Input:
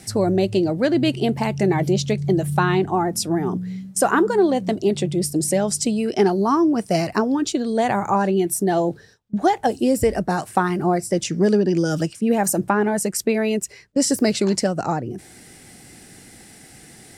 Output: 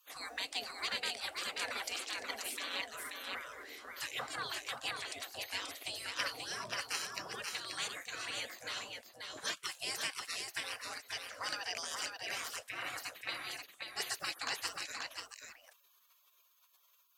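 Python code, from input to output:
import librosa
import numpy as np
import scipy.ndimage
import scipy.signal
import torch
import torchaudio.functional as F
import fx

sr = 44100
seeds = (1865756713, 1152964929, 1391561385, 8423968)

p1 = fx.spec_gate(x, sr, threshold_db=-30, keep='weak')
p2 = fx.highpass(p1, sr, hz=490.0, slope=6)
p3 = fx.high_shelf(p2, sr, hz=5400.0, db=-6.5)
p4 = fx.notch(p3, sr, hz=890.0, q=12.0)
p5 = fx.peak_eq(p4, sr, hz=680.0, db=5.0, octaves=2.6, at=(1.38, 1.86))
p6 = 10.0 ** (-31.5 / 20.0) * (np.abs((p5 / 10.0 ** (-31.5 / 20.0) + 3.0) % 4.0 - 2.0) - 1.0)
p7 = p5 + F.gain(torch.from_numpy(p6), -10.0).numpy()
p8 = p7 + 10.0 ** (-4.5 / 20.0) * np.pad(p7, (int(533 * sr / 1000.0), 0))[:len(p7)]
y = F.gain(torch.from_numpy(p8), 1.0).numpy()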